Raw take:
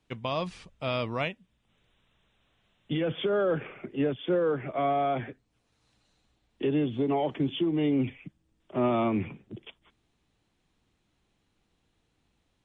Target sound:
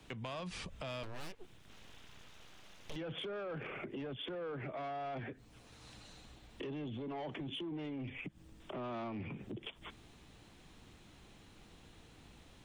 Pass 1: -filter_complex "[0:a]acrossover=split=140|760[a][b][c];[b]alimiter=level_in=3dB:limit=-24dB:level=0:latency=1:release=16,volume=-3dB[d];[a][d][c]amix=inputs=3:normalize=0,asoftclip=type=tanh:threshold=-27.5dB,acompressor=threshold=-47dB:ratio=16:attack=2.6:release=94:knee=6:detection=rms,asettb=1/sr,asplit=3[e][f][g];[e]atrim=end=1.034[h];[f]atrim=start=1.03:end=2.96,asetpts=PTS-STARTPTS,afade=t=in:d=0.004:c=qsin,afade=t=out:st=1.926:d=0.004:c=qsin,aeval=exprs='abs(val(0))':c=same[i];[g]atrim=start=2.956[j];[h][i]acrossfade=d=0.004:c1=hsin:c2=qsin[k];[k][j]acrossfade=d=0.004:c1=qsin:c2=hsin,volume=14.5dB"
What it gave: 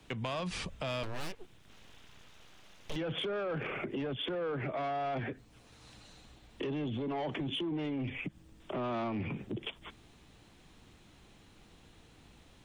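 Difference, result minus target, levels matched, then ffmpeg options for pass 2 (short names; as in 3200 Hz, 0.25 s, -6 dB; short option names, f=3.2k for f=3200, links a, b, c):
compressor: peak gain reduction -6.5 dB
-filter_complex "[0:a]acrossover=split=140|760[a][b][c];[b]alimiter=level_in=3dB:limit=-24dB:level=0:latency=1:release=16,volume=-3dB[d];[a][d][c]amix=inputs=3:normalize=0,asoftclip=type=tanh:threshold=-27.5dB,acompressor=threshold=-54dB:ratio=16:attack=2.6:release=94:knee=6:detection=rms,asettb=1/sr,asplit=3[e][f][g];[e]atrim=end=1.034[h];[f]atrim=start=1.03:end=2.96,asetpts=PTS-STARTPTS,afade=t=in:d=0.004:c=qsin,afade=t=out:st=1.926:d=0.004:c=qsin,aeval=exprs='abs(val(0))':c=same[i];[g]atrim=start=2.956[j];[h][i]acrossfade=d=0.004:c1=hsin:c2=qsin[k];[k][j]acrossfade=d=0.004:c1=qsin:c2=hsin,volume=14.5dB"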